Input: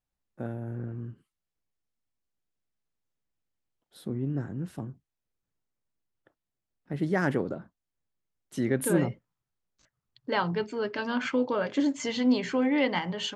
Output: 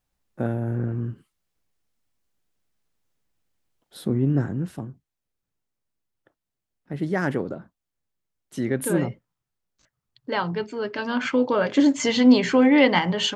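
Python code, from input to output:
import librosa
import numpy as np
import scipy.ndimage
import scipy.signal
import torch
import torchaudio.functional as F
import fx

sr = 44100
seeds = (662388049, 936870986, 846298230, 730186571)

y = fx.gain(x, sr, db=fx.line((4.44, 9.5), (4.89, 2.0), (10.79, 2.0), (11.96, 9.0)))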